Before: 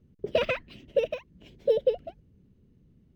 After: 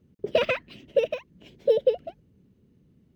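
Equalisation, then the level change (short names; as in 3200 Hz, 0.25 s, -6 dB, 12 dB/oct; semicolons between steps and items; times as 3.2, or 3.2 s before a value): HPF 140 Hz 6 dB/oct; +3.0 dB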